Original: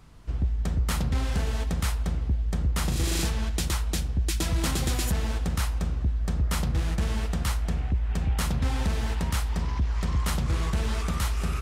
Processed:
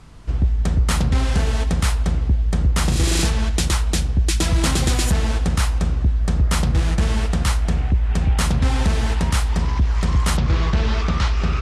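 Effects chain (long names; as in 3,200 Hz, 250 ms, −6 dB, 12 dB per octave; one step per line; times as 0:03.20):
low-pass filter 11,000 Hz 24 dB per octave, from 0:10.37 5,500 Hz
level +8 dB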